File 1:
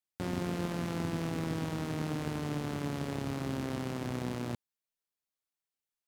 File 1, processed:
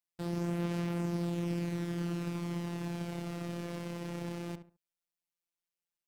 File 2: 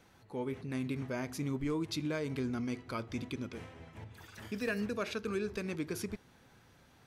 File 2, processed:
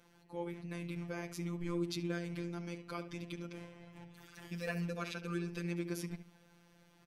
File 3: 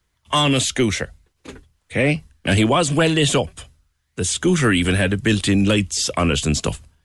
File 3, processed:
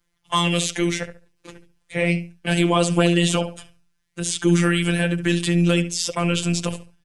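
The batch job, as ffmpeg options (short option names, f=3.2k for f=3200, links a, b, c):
-filter_complex "[0:a]afftfilt=real='hypot(re,im)*cos(PI*b)':imag='0':win_size=1024:overlap=0.75,asplit=2[a][b];[b]adelay=70,lowpass=f=2k:p=1,volume=-10dB,asplit=2[c][d];[d]adelay=70,lowpass=f=2k:p=1,volume=0.27,asplit=2[e][f];[f]adelay=70,lowpass=f=2k:p=1,volume=0.27[g];[a][c][e][g]amix=inputs=4:normalize=0"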